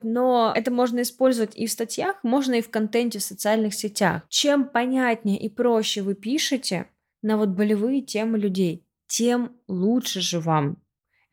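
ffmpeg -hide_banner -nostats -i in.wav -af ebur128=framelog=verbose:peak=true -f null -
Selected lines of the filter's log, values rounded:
Integrated loudness:
  I:         -23.3 LUFS
  Threshold: -33.4 LUFS
Loudness range:
  LRA:         1.9 LU
  Threshold: -43.5 LUFS
  LRA low:   -24.5 LUFS
  LRA high:  -22.7 LUFS
True peak:
  Peak:       -7.8 dBFS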